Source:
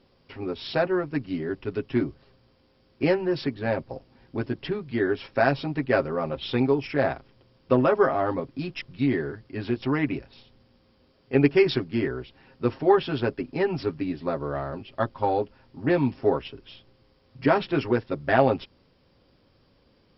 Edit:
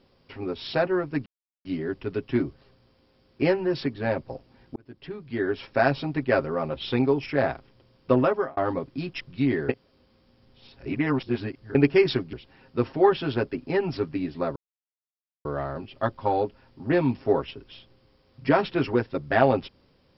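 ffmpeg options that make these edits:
-filter_complex "[0:a]asplit=8[a][b][c][d][e][f][g][h];[a]atrim=end=1.26,asetpts=PTS-STARTPTS,afade=t=out:st=1.256:d=0.004:c=hsin,apad=pad_dur=0.39[i];[b]atrim=start=1.26:end=4.37,asetpts=PTS-STARTPTS,afade=t=in:d=0.004:c=hsin,afade=t=out:st=3.106:d=0.004:c=hsin[j];[c]atrim=start=4.37:end=8.18,asetpts=PTS-STARTPTS,afade=t=in:d=0.87,afade=t=out:st=3.47:d=0.34[k];[d]atrim=start=8.18:end=9.302,asetpts=PTS-STARTPTS,afade=t=in:d=0.004:c=hsin[l];[e]atrim=start=9.298:end=11.362,asetpts=PTS-STARTPTS,areverse[m];[f]atrim=start=11.358:end=11.942[n];[g]atrim=start=12.188:end=14.42,asetpts=PTS-STARTPTS,afade=t=out:st=2.228:d=0.004:c=hsin,apad=pad_dur=0.89[o];[h]atrim=start=14.42,asetpts=PTS-STARTPTS,afade=t=in:d=0.004:c=hsin[p];[i][j][k][l]concat=n=4:v=0:a=1[q];[q][m]acrossfade=d=0.004:c1=hsin:c2=hsin[r];[r][n]acrossfade=d=0.004:c1=hsin:c2=hsin[s];[o][p]concat=n=2:v=0:a=1[t];[s][t]acrossfade=d=0.004:c1=hsin:c2=hsin"

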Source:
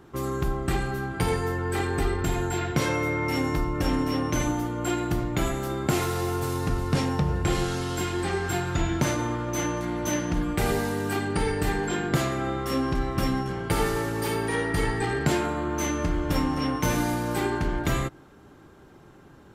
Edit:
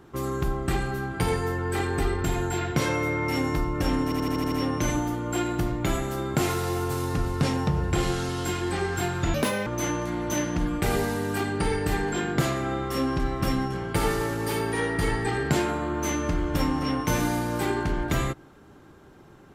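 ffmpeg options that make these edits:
-filter_complex "[0:a]asplit=9[a][b][c][d][e][f][g][h][i];[a]atrim=end=4.122[j];[b]atrim=start=4.038:end=4.122[k];[c]atrim=start=4.038:end=4.122[l];[d]atrim=start=4.038:end=4.122[m];[e]atrim=start=4.038:end=4.122[n];[f]atrim=start=4.038:end=4.122[o];[g]atrim=start=4.038:end=8.864[p];[h]atrim=start=8.86:end=9.42,asetpts=PTS-STARTPTS,asetrate=75852,aresample=44100,atrim=end_sample=14358,asetpts=PTS-STARTPTS[q];[i]atrim=start=9.416[r];[j][k]acrossfade=d=0.004:c1=hsin:c2=hsin[s];[s][l]acrossfade=d=0.004:c1=hsin:c2=hsin[t];[t][m]acrossfade=d=0.004:c1=hsin:c2=hsin[u];[u][n]acrossfade=d=0.004:c1=hsin:c2=hsin[v];[v][o]acrossfade=d=0.004:c1=hsin:c2=hsin[w];[w][p]acrossfade=d=0.004:c1=hsin:c2=hsin[x];[x][q]acrossfade=d=0.004:c1=hsin:c2=hsin[y];[y][r]acrossfade=d=0.004:c1=hsin:c2=hsin"

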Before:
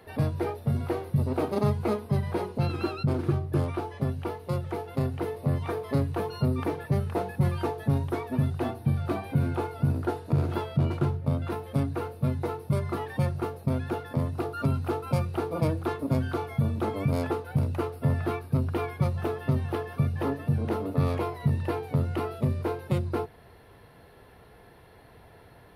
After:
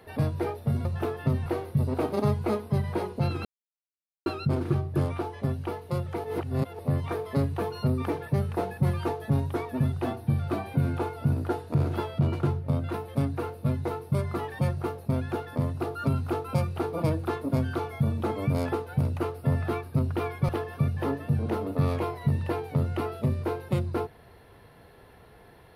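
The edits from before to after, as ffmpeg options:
-filter_complex "[0:a]asplit=7[a][b][c][d][e][f][g];[a]atrim=end=0.852[h];[b]atrim=start=19.068:end=19.682[i];[c]atrim=start=0.848:end=2.84,asetpts=PTS-STARTPTS,afade=t=out:st=1.988:d=0.004:c=hsin,apad=pad_dur=0.81[j];[d]atrim=start=2.84:end=4.822,asetpts=PTS-STARTPTS,afade=t=in:d=0.004:c=hsin[k];[e]atrim=start=4.818:end=5.372,asetpts=PTS-STARTPTS,areverse[l];[f]atrim=start=5.368:end=19.072[m];[g]atrim=start=19.678[n];[h][i]acrossfade=d=0.004:c1=hsin:c2=hsin[o];[j][k]concat=n=2:v=0:a=1[p];[o][p]acrossfade=d=0.004:c1=hsin:c2=hsin[q];[q][l]acrossfade=d=0.004:c1=hsin:c2=hsin[r];[r][m]acrossfade=d=0.004:c1=hsin:c2=hsin[s];[s][n]acrossfade=d=0.004:c1=hsin:c2=hsin"

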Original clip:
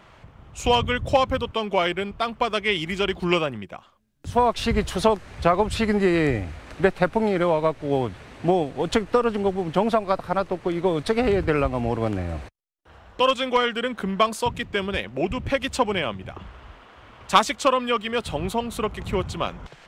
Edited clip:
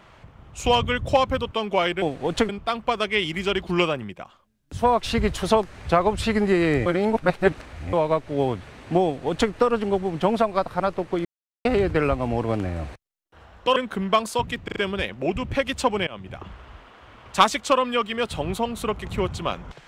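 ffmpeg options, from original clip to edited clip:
-filter_complex "[0:a]asplit=12[a][b][c][d][e][f][g][h][i][j][k][l];[a]atrim=end=2.022[m];[b]atrim=start=8.568:end=9.042[n];[c]atrim=start=2.018:end=6.392[o];[d]atrim=start=6.388:end=7.462,asetpts=PTS-STARTPTS,areverse[p];[e]atrim=start=7.458:end=10.78,asetpts=PTS-STARTPTS,afade=t=out:st=3.318:d=0.004:c=hsin[q];[f]atrim=start=10.78:end=11.18,asetpts=PTS-STARTPTS,volume=0[r];[g]atrim=start=11.18:end=13.292,asetpts=PTS-STARTPTS,afade=t=in:d=0.004:c=hsin[s];[h]atrim=start=13.828:end=14.752[t];[i]atrim=start=14.708:end=14.752[u];[j]atrim=start=14.708:end=14.752[v];[k]atrim=start=14.708:end=16.02,asetpts=PTS-STARTPTS,afade=t=out:st=1.308:d=0.004:c=hsin:silence=0.0794328[w];[l]atrim=start=16.02,asetpts=PTS-STARTPTS,afade=t=in:d=0.33:c=qsin:silence=0.0794328[x];[m][n]acrossfade=d=0.004:c1=hsin:c2=hsin[y];[y][o]acrossfade=d=0.004:c1=hsin:c2=hsin[z];[z][p]acrossfade=d=0.004:c1=hsin:c2=hsin[aa];[q][r][s]concat=n=3:v=0:a=1[ab];[aa][ab]acrossfade=d=0.004:c1=hsin:c2=hsin[ac];[ac][t]acrossfade=d=0.004:c1=hsin:c2=hsin[ad];[ad][u]acrossfade=d=0.004:c1=hsin:c2=hsin[ae];[ae][v]acrossfade=d=0.004:c1=hsin:c2=hsin[af];[w][x]concat=n=2:v=0:a=1[ag];[af][ag]acrossfade=d=0.004:c1=hsin:c2=hsin"

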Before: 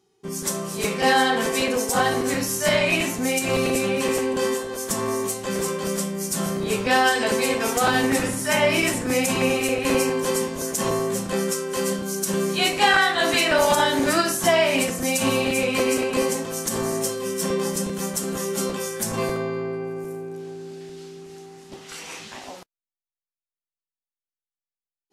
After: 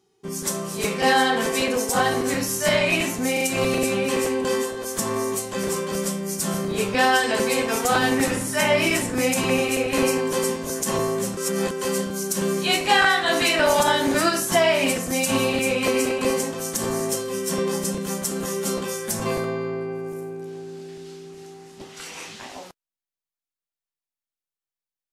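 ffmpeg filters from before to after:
-filter_complex "[0:a]asplit=5[a][b][c][d][e];[a]atrim=end=3.372[f];[b]atrim=start=3.328:end=3.372[g];[c]atrim=start=3.328:end=11.292[h];[d]atrim=start=11.288:end=11.632,asetpts=PTS-STARTPTS,areverse[i];[e]atrim=start=11.628[j];[f][g]acrossfade=d=0.004:c1=hsin:c2=hsin[k];[k][h]acrossfade=d=0.004:c1=hsin:c2=hsin[l];[l][i]acrossfade=d=0.004:c1=hsin:c2=hsin[m];[m][j]acrossfade=d=0.004:c1=hsin:c2=hsin"

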